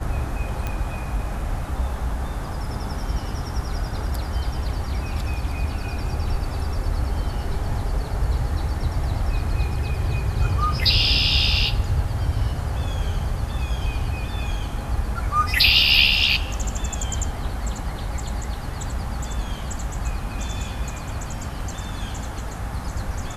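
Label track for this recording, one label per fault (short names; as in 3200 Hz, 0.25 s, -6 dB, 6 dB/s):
0.670000	0.670000	pop -13 dBFS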